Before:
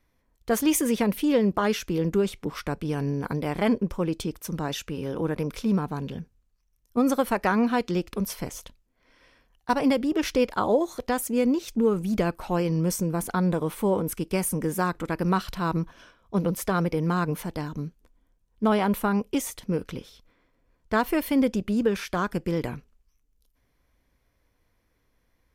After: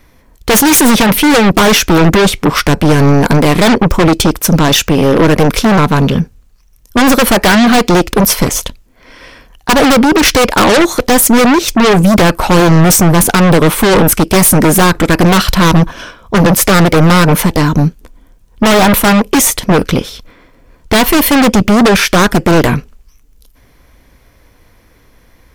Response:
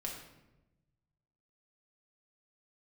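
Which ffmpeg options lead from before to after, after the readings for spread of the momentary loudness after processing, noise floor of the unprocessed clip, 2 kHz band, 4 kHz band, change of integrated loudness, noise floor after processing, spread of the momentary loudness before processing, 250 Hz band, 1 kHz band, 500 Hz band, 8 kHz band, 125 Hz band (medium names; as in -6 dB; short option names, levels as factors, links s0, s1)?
6 LU, -71 dBFS, +21.5 dB, +24.5 dB, +17.5 dB, -47 dBFS, 9 LU, +16.0 dB, +18.0 dB, +15.5 dB, +22.5 dB, +19.0 dB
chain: -af "aeval=exprs='0.335*sin(PI/2*2.82*val(0)/0.335)':c=same,aeval=exprs='0.355*(cos(1*acos(clip(val(0)/0.355,-1,1)))-cos(1*PI/2))+0.141*(cos(5*acos(clip(val(0)/0.355,-1,1)))-cos(5*PI/2))+0.0178*(cos(6*acos(clip(val(0)/0.355,-1,1)))-cos(6*PI/2))+0.0794*(cos(7*acos(clip(val(0)/0.355,-1,1)))-cos(7*PI/2))':c=same,volume=2.37"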